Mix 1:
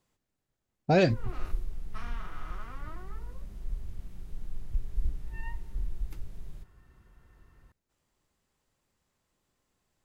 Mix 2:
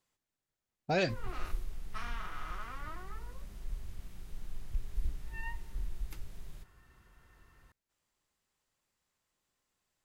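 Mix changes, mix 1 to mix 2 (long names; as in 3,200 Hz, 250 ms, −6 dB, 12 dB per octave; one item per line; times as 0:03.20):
speech −6.5 dB
master: add tilt shelving filter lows −4.5 dB, about 710 Hz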